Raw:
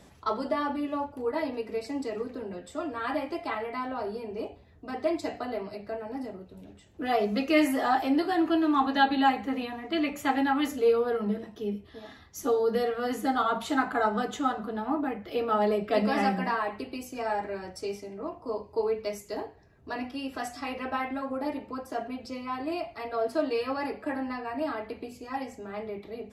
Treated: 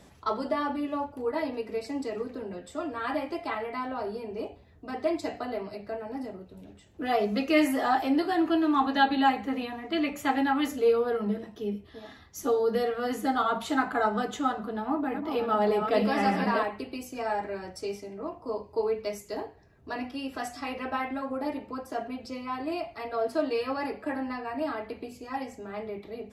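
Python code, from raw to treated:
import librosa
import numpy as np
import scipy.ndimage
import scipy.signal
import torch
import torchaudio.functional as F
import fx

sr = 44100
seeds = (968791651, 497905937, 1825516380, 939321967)

y = fx.reverse_delay(x, sr, ms=576, wet_db=-5.0, at=(14.54, 16.68))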